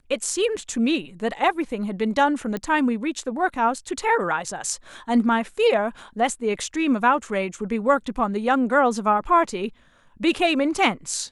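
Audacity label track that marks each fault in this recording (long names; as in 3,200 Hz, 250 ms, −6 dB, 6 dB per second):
2.570000	2.570000	click −16 dBFS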